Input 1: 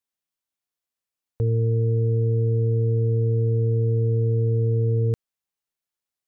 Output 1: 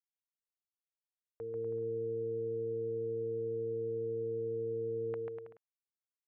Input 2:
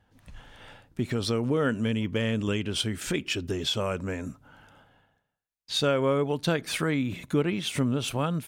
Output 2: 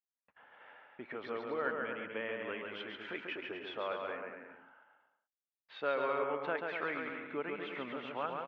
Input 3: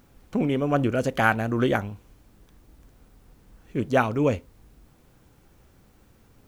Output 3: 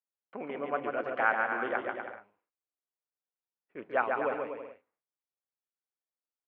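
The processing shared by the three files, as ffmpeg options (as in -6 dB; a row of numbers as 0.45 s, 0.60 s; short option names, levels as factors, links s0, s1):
-af "highpass=610,agate=range=0.0141:threshold=0.00141:ratio=16:detection=peak,lowpass=f=2200:w=0.5412,lowpass=f=2200:w=1.3066,aecho=1:1:140|245|323.8|382.8|427.1:0.631|0.398|0.251|0.158|0.1,volume=0.562"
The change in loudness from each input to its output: -15.5 LU, -10.5 LU, -7.5 LU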